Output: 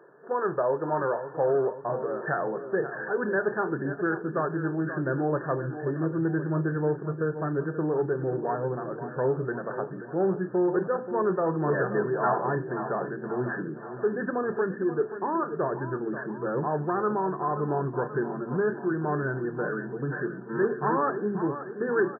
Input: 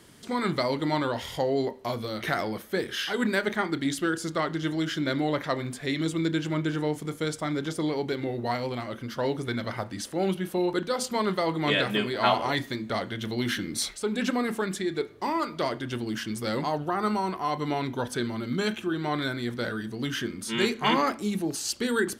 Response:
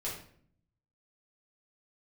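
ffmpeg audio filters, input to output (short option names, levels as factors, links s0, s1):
-af "lowshelf=f=320:t=q:w=3:g=-9,aecho=1:1:531|1062|1593|2124|2655|3186:0.251|0.143|0.0816|0.0465|0.0265|0.0151,asubboost=boost=9:cutoff=170,aresample=11025,asoftclip=type=tanh:threshold=0.141,aresample=44100,afftfilt=real='re*between(b*sr/4096,120,1800)':imag='im*between(b*sr/4096,120,1800)':win_size=4096:overlap=0.75,volume=1.19"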